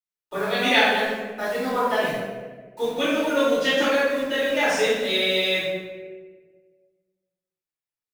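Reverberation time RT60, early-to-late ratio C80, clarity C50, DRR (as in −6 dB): 1.5 s, 1.0 dB, −2.0 dB, −14.5 dB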